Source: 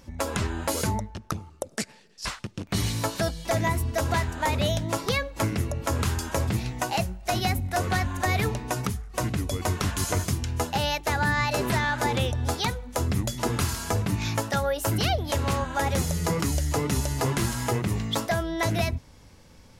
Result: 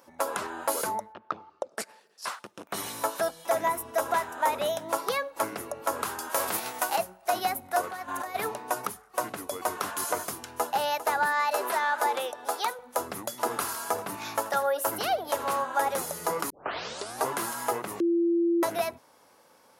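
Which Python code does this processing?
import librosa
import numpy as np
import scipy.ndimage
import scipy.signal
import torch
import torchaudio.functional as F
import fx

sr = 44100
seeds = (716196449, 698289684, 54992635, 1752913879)

y = fx.lowpass(x, sr, hz=fx.line((1.12, 3100.0), (1.77, 6800.0)), slope=24, at=(1.12, 1.77), fade=0.02)
y = fx.notch(y, sr, hz=4500.0, q=9.3, at=(2.48, 4.86))
y = fx.envelope_flatten(y, sr, power=0.6, at=(6.29, 6.95), fade=0.02)
y = fx.over_compress(y, sr, threshold_db=-31.0, ratio=-1.0, at=(7.81, 8.34), fade=0.02)
y = fx.echo_throw(y, sr, start_s=10.33, length_s=0.41, ms=400, feedback_pct=35, wet_db=-13.0)
y = fx.highpass(y, sr, hz=350.0, slope=12, at=(11.26, 12.79))
y = fx.echo_single(y, sr, ms=82, db=-16.0, at=(13.38, 15.78))
y = fx.edit(y, sr, fx.tape_start(start_s=16.5, length_s=0.76),
    fx.bleep(start_s=18.0, length_s=0.63, hz=340.0, db=-14.5), tone=tone)
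y = scipy.signal.sosfilt(scipy.signal.butter(2, 570.0, 'highpass', fs=sr, output='sos'), y)
y = fx.band_shelf(y, sr, hz=3800.0, db=-9.0, octaves=2.4)
y = F.gain(torch.from_numpy(y), 3.0).numpy()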